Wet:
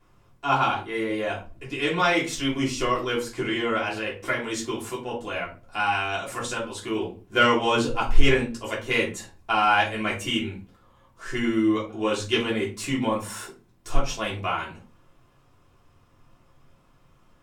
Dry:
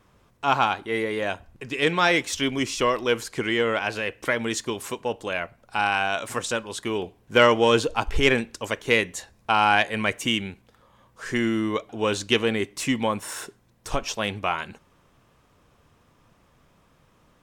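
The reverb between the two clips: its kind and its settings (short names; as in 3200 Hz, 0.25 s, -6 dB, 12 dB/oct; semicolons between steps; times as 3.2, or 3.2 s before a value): shoebox room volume 150 m³, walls furnished, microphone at 3.2 m; gain -8.5 dB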